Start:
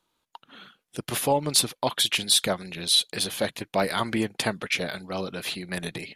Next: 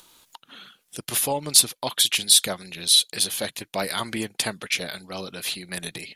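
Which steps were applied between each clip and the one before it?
high-shelf EQ 3,200 Hz +12 dB
upward compression, threshold −35 dBFS
level −4 dB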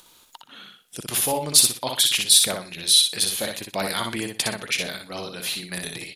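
repeating echo 61 ms, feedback 22%, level −4.5 dB

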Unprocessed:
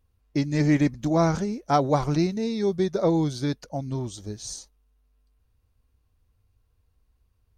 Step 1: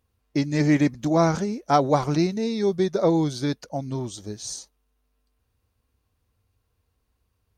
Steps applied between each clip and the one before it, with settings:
high-pass filter 140 Hz 6 dB per octave
level +2.5 dB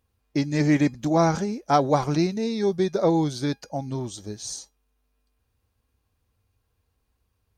tuned comb filter 810 Hz, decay 0.18 s, harmonics all, mix 60%
level +7 dB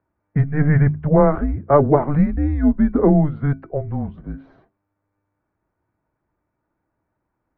low-shelf EQ 460 Hz +5 dB
mains-hum notches 60/120/180/240/300/360/420/480/540 Hz
single-sideband voice off tune −150 Hz 200–2,000 Hz
level +5 dB

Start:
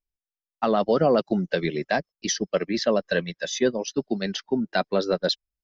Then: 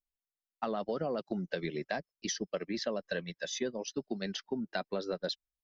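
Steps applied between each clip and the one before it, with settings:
downward compressor, threshold −23 dBFS, peak gain reduction 8 dB
level −7.5 dB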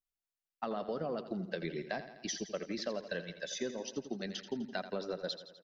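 repeating echo 84 ms, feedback 60%, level −12 dB
level −3 dB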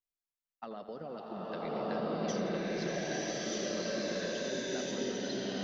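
slow-attack reverb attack 1,320 ms, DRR −10 dB
level −6.5 dB

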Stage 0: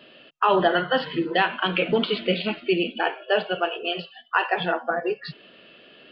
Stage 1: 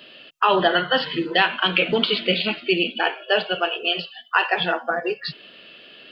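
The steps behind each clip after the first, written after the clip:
high-shelf EQ 2,500 Hz +11.5 dB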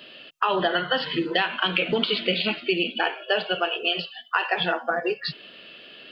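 downward compressor 5 to 1, threshold −19 dBFS, peak gain reduction 6.5 dB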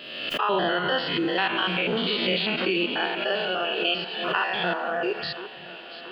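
spectrum averaged block by block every 100 ms
delay that swaps between a low-pass and a high-pass 341 ms, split 2,100 Hz, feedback 77%, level −13 dB
background raised ahead of every attack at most 45 dB per second
level +1.5 dB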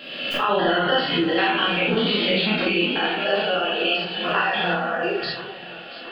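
rectangular room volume 380 cubic metres, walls furnished, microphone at 2.2 metres

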